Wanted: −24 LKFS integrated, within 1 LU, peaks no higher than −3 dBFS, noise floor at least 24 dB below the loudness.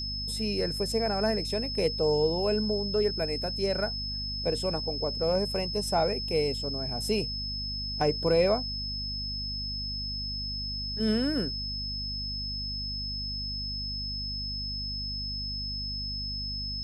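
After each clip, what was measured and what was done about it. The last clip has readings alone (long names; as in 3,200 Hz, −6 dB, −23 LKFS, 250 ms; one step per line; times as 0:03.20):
mains hum 50 Hz; hum harmonics up to 250 Hz; level of the hum −36 dBFS; interfering tone 5,200 Hz; level of the tone −33 dBFS; integrated loudness −29.5 LKFS; sample peak −13.0 dBFS; target loudness −24.0 LKFS
→ hum removal 50 Hz, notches 5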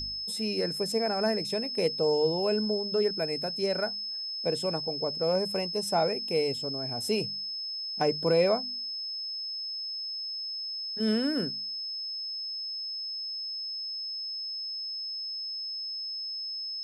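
mains hum none found; interfering tone 5,200 Hz; level of the tone −33 dBFS
→ notch filter 5,200 Hz, Q 30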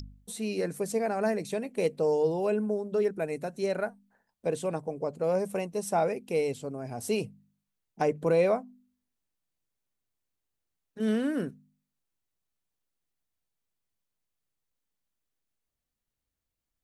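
interfering tone none found; integrated loudness −30.0 LKFS; sample peak −14.5 dBFS; target loudness −24.0 LKFS
→ level +6 dB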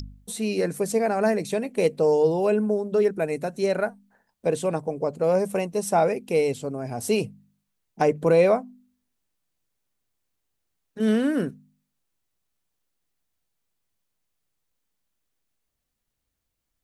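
integrated loudness −24.0 LKFS; sample peak −8.5 dBFS; background noise floor −80 dBFS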